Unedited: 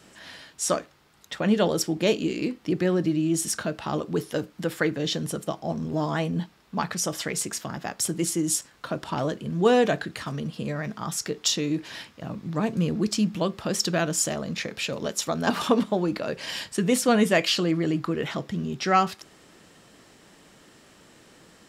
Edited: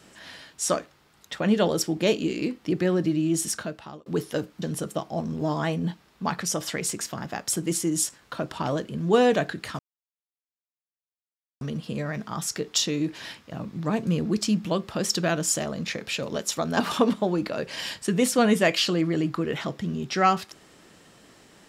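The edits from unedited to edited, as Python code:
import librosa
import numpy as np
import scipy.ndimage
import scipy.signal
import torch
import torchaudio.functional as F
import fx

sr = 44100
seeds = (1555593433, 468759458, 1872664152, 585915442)

y = fx.edit(x, sr, fx.fade_out_span(start_s=3.45, length_s=0.61),
    fx.cut(start_s=4.62, length_s=0.52),
    fx.insert_silence(at_s=10.31, length_s=1.82), tone=tone)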